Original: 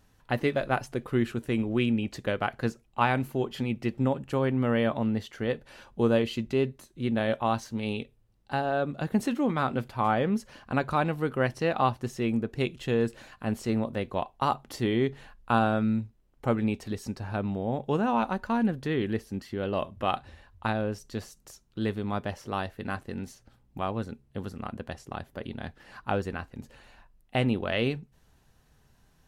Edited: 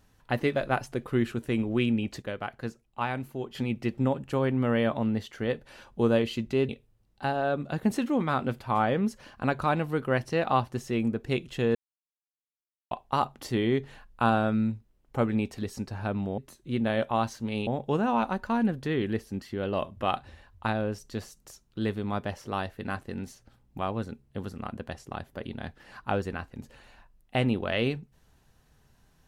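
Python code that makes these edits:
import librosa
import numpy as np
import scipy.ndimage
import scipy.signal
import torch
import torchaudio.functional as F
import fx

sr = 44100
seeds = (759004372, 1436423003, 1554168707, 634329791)

y = fx.edit(x, sr, fx.clip_gain(start_s=2.22, length_s=1.33, db=-6.0),
    fx.move(start_s=6.69, length_s=1.29, to_s=17.67),
    fx.silence(start_s=13.04, length_s=1.16), tone=tone)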